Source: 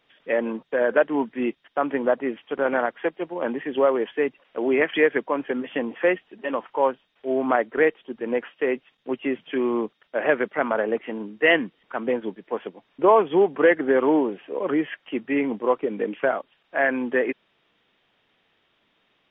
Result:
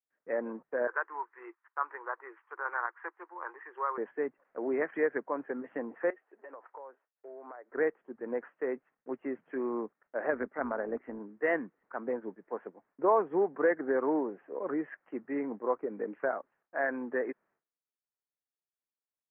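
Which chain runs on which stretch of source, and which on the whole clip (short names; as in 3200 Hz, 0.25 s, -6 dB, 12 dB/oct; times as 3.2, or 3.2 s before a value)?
0.87–3.98 Chebyshev high-pass 340 Hz, order 6 + resonant low shelf 790 Hz -8.5 dB, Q 3
6.1–7.71 HPF 370 Hz 24 dB/oct + compressor 8:1, threshold -34 dBFS
10.3–11.19 bell 250 Hz +7.5 dB 0.29 oct + AM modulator 170 Hz, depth 25%
whole clip: steep low-pass 1800 Hz 36 dB/oct; expander -53 dBFS; low shelf 160 Hz -9 dB; gain -8.5 dB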